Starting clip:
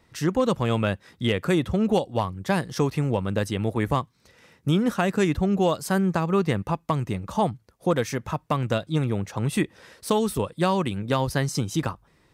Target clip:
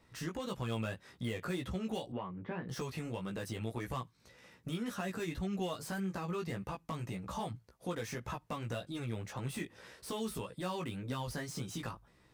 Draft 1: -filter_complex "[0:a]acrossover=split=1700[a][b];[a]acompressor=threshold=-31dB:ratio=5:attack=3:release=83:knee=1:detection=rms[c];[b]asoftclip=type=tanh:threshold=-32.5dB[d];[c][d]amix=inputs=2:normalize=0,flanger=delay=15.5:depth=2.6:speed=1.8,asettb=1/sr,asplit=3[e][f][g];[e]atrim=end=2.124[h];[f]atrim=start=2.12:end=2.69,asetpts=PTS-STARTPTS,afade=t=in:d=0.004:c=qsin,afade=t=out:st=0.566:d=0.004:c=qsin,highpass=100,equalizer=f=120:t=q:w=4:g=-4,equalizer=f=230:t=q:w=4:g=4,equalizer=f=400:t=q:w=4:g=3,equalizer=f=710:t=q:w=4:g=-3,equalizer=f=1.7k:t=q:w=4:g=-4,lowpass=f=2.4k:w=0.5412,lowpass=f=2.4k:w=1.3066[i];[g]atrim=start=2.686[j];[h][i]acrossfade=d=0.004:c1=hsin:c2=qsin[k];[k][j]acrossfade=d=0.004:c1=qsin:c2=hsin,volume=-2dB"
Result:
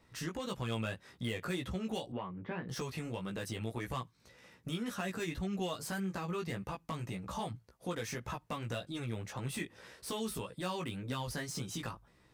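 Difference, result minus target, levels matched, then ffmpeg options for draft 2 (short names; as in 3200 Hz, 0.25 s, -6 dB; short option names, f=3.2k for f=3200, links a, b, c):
soft clip: distortion -4 dB
-filter_complex "[0:a]acrossover=split=1700[a][b];[a]acompressor=threshold=-31dB:ratio=5:attack=3:release=83:knee=1:detection=rms[c];[b]asoftclip=type=tanh:threshold=-38.5dB[d];[c][d]amix=inputs=2:normalize=0,flanger=delay=15.5:depth=2.6:speed=1.8,asettb=1/sr,asplit=3[e][f][g];[e]atrim=end=2.124[h];[f]atrim=start=2.12:end=2.69,asetpts=PTS-STARTPTS,afade=t=in:d=0.004:c=qsin,afade=t=out:st=0.566:d=0.004:c=qsin,highpass=100,equalizer=f=120:t=q:w=4:g=-4,equalizer=f=230:t=q:w=4:g=4,equalizer=f=400:t=q:w=4:g=3,equalizer=f=710:t=q:w=4:g=-3,equalizer=f=1.7k:t=q:w=4:g=-4,lowpass=f=2.4k:w=0.5412,lowpass=f=2.4k:w=1.3066[i];[g]atrim=start=2.686[j];[h][i]acrossfade=d=0.004:c1=hsin:c2=qsin[k];[k][j]acrossfade=d=0.004:c1=qsin:c2=hsin,volume=-2dB"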